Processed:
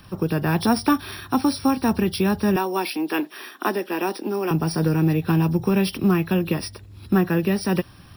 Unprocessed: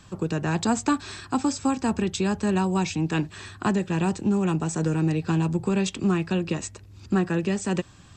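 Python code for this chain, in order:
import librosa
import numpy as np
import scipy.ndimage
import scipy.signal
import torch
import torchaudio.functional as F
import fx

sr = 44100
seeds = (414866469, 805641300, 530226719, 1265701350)

y = fx.freq_compress(x, sr, knee_hz=2800.0, ratio=1.5)
y = fx.steep_highpass(y, sr, hz=260.0, slope=36, at=(2.56, 4.51))
y = np.repeat(y[::3], 3)[:len(y)]
y = y * librosa.db_to_amplitude(4.0)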